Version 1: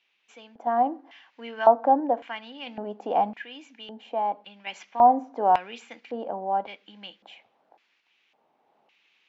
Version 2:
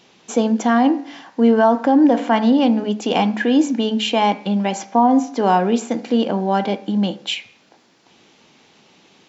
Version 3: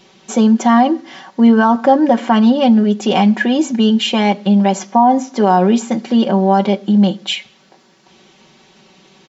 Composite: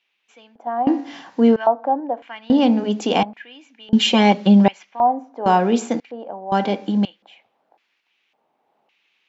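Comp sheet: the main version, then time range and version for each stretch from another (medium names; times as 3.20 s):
1
0.87–1.56 s: from 2
2.50–3.23 s: from 2
3.93–4.68 s: from 3
5.46–6.00 s: from 2
6.52–7.05 s: from 2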